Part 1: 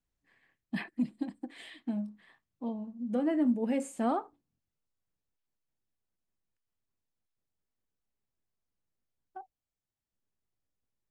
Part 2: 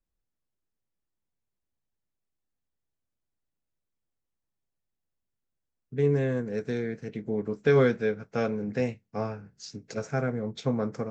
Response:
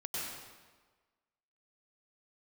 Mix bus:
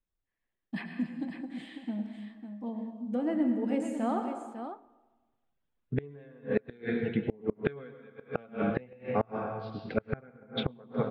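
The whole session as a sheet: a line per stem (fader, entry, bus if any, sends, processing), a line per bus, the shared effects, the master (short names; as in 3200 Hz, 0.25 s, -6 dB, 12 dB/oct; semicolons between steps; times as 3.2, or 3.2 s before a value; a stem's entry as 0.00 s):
-4.0 dB, 0.00 s, send -4.5 dB, echo send -6.5 dB, gate with hold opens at -55 dBFS; high shelf 8400 Hz -11 dB
-4.5 dB, 0.00 s, send -4.5 dB, no echo send, reverb removal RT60 2 s; elliptic low-pass 3600 Hz, stop band 50 dB; AGC gain up to 11 dB; auto duck -23 dB, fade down 0.20 s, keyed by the first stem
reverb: on, RT60 1.4 s, pre-delay 91 ms
echo: echo 0.55 s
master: flipped gate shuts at -15 dBFS, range -30 dB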